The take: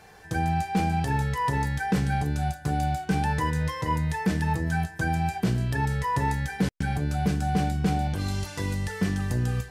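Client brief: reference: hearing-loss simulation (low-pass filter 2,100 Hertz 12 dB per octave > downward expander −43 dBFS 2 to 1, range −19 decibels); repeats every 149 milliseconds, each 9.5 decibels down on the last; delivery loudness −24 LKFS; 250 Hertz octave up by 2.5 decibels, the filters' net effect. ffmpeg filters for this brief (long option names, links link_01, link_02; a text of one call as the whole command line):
ffmpeg -i in.wav -af "lowpass=2100,equalizer=frequency=250:width_type=o:gain=4,aecho=1:1:149|298|447|596:0.335|0.111|0.0365|0.012,agate=range=-19dB:threshold=-43dB:ratio=2,volume=2dB" out.wav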